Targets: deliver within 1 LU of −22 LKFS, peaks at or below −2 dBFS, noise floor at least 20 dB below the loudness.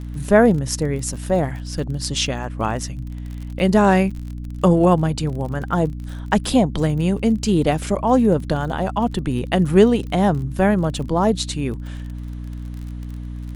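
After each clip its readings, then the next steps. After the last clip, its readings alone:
crackle rate 35 per second; mains hum 60 Hz; hum harmonics up to 300 Hz; level of the hum −28 dBFS; integrated loudness −19.5 LKFS; sample peak −1.0 dBFS; target loudness −22.0 LKFS
→ click removal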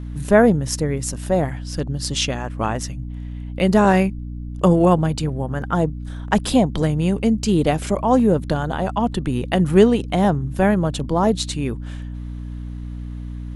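crackle rate 0.074 per second; mains hum 60 Hz; hum harmonics up to 300 Hz; level of the hum −28 dBFS
→ mains-hum notches 60/120/180/240/300 Hz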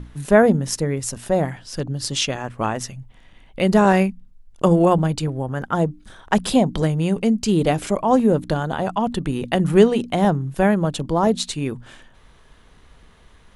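mains hum none found; integrated loudness −20.0 LKFS; sample peak −1.0 dBFS; target loudness −22.0 LKFS
→ level −2 dB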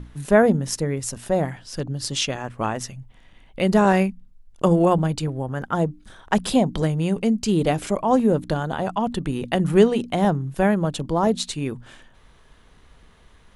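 integrated loudness −22.0 LKFS; sample peak −3.0 dBFS; background noise floor −53 dBFS

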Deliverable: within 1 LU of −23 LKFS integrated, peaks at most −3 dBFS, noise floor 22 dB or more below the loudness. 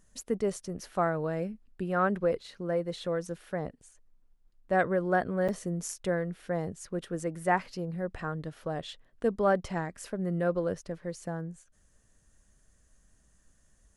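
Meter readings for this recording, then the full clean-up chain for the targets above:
number of dropouts 1; longest dropout 6.7 ms; integrated loudness −32.0 LKFS; sample peak −13.0 dBFS; target loudness −23.0 LKFS
→ repair the gap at 0:05.48, 6.7 ms
level +9 dB

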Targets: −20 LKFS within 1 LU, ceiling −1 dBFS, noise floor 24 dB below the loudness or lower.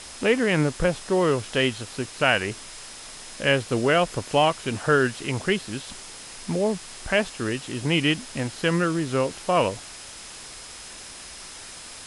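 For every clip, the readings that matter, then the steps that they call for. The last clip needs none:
interfering tone 5,100 Hz; level of the tone −49 dBFS; background noise floor −41 dBFS; target noise floor −48 dBFS; integrated loudness −24.0 LKFS; sample peak −5.0 dBFS; target loudness −20.0 LKFS
→ notch filter 5,100 Hz, Q 30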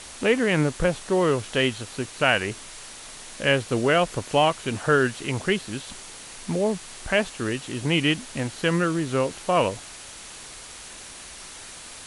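interfering tone none found; background noise floor −42 dBFS; target noise floor −48 dBFS
→ broadband denoise 6 dB, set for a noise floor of −42 dBFS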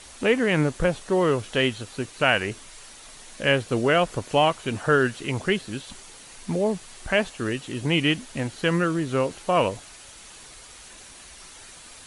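background noise floor −46 dBFS; target noise floor −48 dBFS
→ broadband denoise 6 dB, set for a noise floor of −46 dBFS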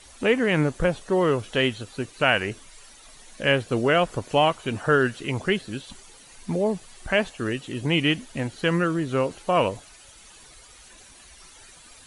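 background noise floor −50 dBFS; integrated loudness −24.0 LKFS; sample peak −5.5 dBFS; target loudness −20.0 LKFS
→ level +4 dB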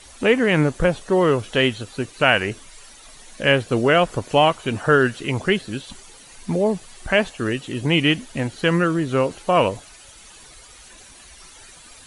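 integrated loudness −20.0 LKFS; sample peak −1.5 dBFS; background noise floor −46 dBFS

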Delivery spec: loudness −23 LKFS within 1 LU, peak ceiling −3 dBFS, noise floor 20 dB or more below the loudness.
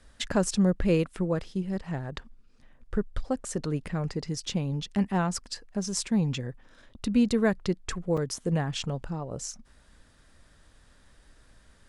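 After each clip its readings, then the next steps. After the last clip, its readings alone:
number of dropouts 1; longest dropout 4.9 ms; integrated loudness −29.5 LKFS; sample peak −13.0 dBFS; target loudness −23.0 LKFS
→ repair the gap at 0:08.17, 4.9 ms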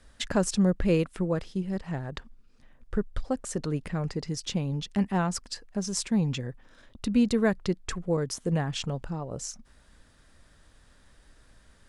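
number of dropouts 0; integrated loudness −29.5 LKFS; sample peak −13.0 dBFS; target loudness −23.0 LKFS
→ level +6.5 dB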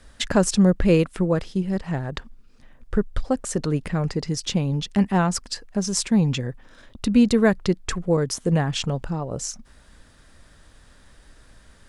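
integrated loudness −23.0 LKFS; sample peak −6.5 dBFS; background noise floor −53 dBFS

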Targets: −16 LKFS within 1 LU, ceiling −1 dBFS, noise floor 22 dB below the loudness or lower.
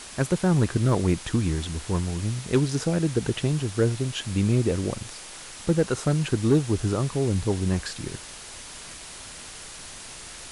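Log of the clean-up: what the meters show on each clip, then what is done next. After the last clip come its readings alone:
share of clipped samples 0.2%; peaks flattened at −12.5 dBFS; background noise floor −41 dBFS; target noise floor −48 dBFS; integrated loudness −25.5 LKFS; sample peak −12.5 dBFS; target loudness −16.0 LKFS
→ clipped peaks rebuilt −12.5 dBFS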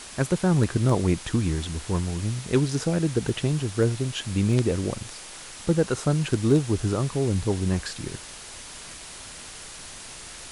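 share of clipped samples 0.0%; background noise floor −41 dBFS; target noise floor −47 dBFS
→ broadband denoise 6 dB, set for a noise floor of −41 dBFS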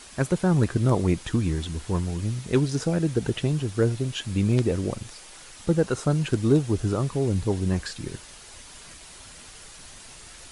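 background noise floor −46 dBFS; target noise floor −47 dBFS
→ broadband denoise 6 dB, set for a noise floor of −46 dBFS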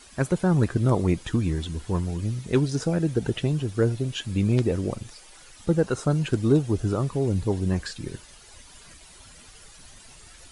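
background noise floor −49 dBFS; integrated loudness −25.0 LKFS; sample peak −6.5 dBFS; target loudness −16.0 LKFS
→ level +9 dB
brickwall limiter −1 dBFS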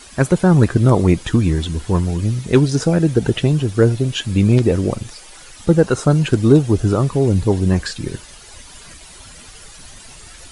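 integrated loudness −16.5 LKFS; sample peak −1.0 dBFS; background noise floor −40 dBFS

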